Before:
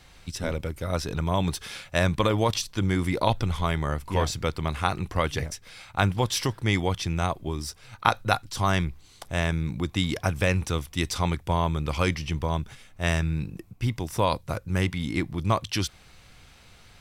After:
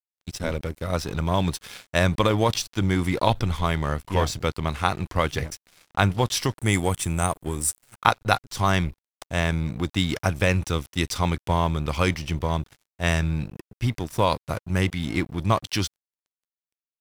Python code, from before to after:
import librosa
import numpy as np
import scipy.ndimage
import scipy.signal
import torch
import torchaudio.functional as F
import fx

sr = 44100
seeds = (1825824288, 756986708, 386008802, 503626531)

y = fx.high_shelf_res(x, sr, hz=6500.0, db=10.0, q=3.0, at=(6.58, 8.03), fade=0.02)
y = np.sign(y) * np.maximum(np.abs(y) - 10.0 ** (-41.5 / 20.0), 0.0)
y = F.gain(torch.from_numpy(y), 3.0).numpy()